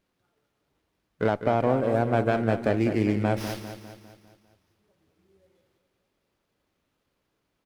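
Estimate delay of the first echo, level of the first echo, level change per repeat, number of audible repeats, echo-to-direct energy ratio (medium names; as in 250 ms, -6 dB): 201 ms, -9.5 dB, -6.0 dB, 5, -8.5 dB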